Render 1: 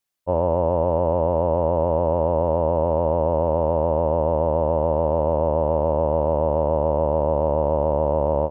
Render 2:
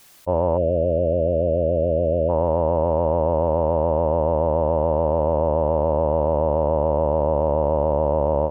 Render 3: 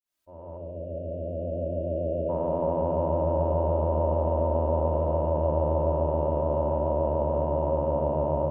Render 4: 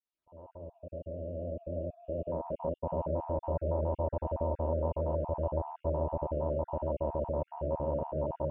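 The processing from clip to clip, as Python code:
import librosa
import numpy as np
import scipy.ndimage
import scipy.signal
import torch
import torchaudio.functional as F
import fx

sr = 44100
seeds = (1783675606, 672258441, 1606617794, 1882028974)

y1 = fx.spec_erase(x, sr, start_s=0.58, length_s=1.71, low_hz=690.0, high_hz=2300.0)
y1 = fx.env_flatten(y1, sr, amount_pct=50)
y2 = fx.fade_in_head(y1, sr, length_s=2.77)
y2 = fx.room_shoebox(y2, sr, seeds[0], volume_m3=2700.0, walls='furnished', distance_m=2.8)
y2 = y2 * librosa.db_to_amplitude(-9.0)
y3 = fx.spec_dropout(y2, sr, seeds[1], share_pct=32)
y3 = fx.air_absorb(y3, sr, metres=220.0)
y3 = y3 * librosa.db_to_amplitude(-5.5)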